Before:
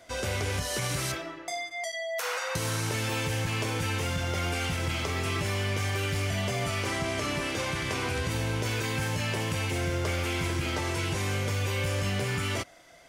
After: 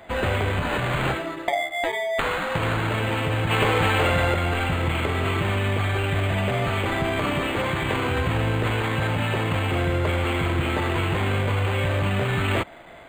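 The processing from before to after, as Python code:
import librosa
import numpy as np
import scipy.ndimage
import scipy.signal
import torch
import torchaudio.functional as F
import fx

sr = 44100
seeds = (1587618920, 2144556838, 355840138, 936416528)

y = fx.high_shelf(x, sr, hz=5200.0, db=8.0)
y = fx.rider(y, sr, range_db=4, speed_s=0.5)
y = fx.spec_box(y, sr, start_s=3.5, length_s=0.84, low_hz=360.0, high_hz=8100.0, gain_db=6)
y = np.interp(np.arange(len(y)), np.arange(len(y))[::8], y[::8])
y = y * 10.0 ** (6.5 / 20.0)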